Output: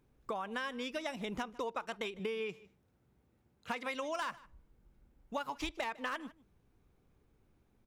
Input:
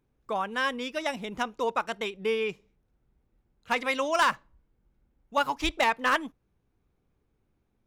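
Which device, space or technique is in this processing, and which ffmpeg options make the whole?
serial compression, peaks first: -filter_complex "[0:a]acompressor=threshold=-34dB:ratio=6,acompressor=threshold=-45dB:ratio=1.5,asettb=1/sr,asplit=3[link_01][link_02][link_03];[link_01]atrim=end=2.194[link_04];[link_02]atrim=start=2.19:end=3.95,asetpts=PTS-STARTPTS,afade=type=in:duration=0.004:curve=qsin,afade=type=out:start_time=1.756:duration=0.004:curve=qsin,highpass=frequency=70:width=0.5412,highpass=frequency=70:width=1.3066[link_05];[link_03]atrim=start=3.946[link_06];[link_04][link_05]acrossfade=duration=0.004:curve1=hsin:curve2=qsin[link_07];[link_07][link_06]acrossfade=duration=0.004:curve1=qsin:curve2=hsin,aecho=1:1:153:0.0891,volume=3dB"

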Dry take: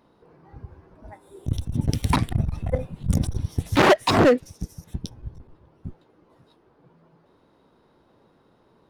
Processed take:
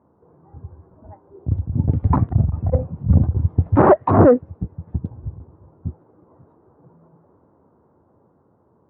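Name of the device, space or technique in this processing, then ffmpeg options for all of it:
action camera in a waterproof case: -af "highpass=91,lowpass=frequency=1200:width=0.5412,lowpass=frequency=1200:width=1.3066,equalizer=frequency=81:width_type=o:width=1:gain=10.5,dynaudnorm=framelen=470:gausssize=9:maxgain=8dB" -ar 48000 -c:a aac -b:a 128k

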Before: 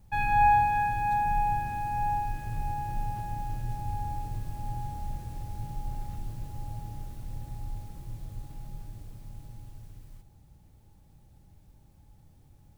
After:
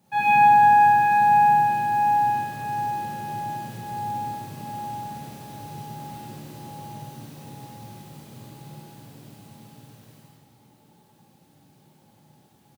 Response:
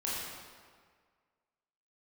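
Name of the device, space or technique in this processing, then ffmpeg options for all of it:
PA in a hall: -filter_complex "[0:a]highpass=frequency=160:width=0.5412,highpass=frequency=160:width=1.3066,equalizer=frequency=3700:width_type=o:width=0.61:gain=3,aecho=1:1:98:0.531[link_01];[1:a]atrim=start_sample=2205[link_02];[link_01][link_02]afir=irnorm=-1:irlink=0,volume=3dB"

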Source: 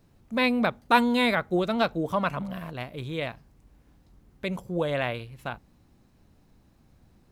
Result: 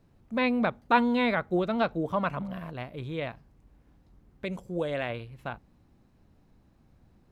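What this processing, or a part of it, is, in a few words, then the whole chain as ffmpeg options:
behind a face mask: -filter_complex "[0:a]acrossover=split=4900[link_01][link_02];[link_02]acompressor=threshold=-55dB:ratio=4:attack=1:release=60[link_03];[link_01][link_03]amix=inputs=2:normalize=0,highshelf=frequency=3500:gain=-8,asettb=1/sr,asplit=3[link_04][link_05][link_06];[link_04]atrim=end=4.454[link_07];[link_05]atrim=start=4.45:end=5.1,asetpts=PTS-STARTPTS,afade=type=in:duration=0.004:curve=qsin,afade=type=out:start_time=0.646:duration=0.004:curve=qsin,equalizer=frequency=125:width_type=o:width=1:gain=-5,equalizer=frequency=1000:width_type=o:width=1:gain=-5,equalizer=frequency=8000:width_type=o:width=1:gain=8[link_08];[link_06]atrim=start=5.096[link_09];[link_07][link_08]acrossfade=duration=0.004:curve1=hsin:curve2=qsin[link_10];[link_10][link_09]acrossfade=duration=0.004:curve1=qsin:curve2=hsin,volume=-1.5dB"

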